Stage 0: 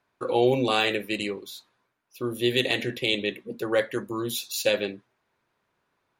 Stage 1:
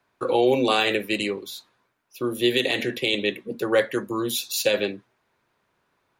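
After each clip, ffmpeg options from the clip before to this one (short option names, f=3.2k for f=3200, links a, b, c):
-filter_complex "[0:a]acrossover=split=190|950|5100[a][b][c][d];[a]acompressor=threshold=-44dB:ratio=6[e];[e][b][c][d]amix=inputs=4:normalize=0,alimiter=level_in=12.5dB:limit=-1dB:release=50:level=0:latency=1,volume=-8.5dB"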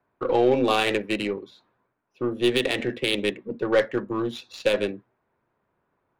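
-af "adynamicsmooth=sensitivity=1:basefreq=1.6k,aeval=exprs='0.335*(cos(1*acos(clip(val(0)/0.335,-1,1)))-cos(1*PI/2))+0.00944*(cos(6*acos(clip(val(0)/0.335,-1,1)))-cos(6*PI/2))':c=same"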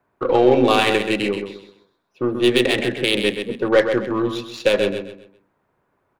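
-af "aecho=1:1:130|260|390|520:0.422|0.135|0.0432|0.0138,volume=5dB"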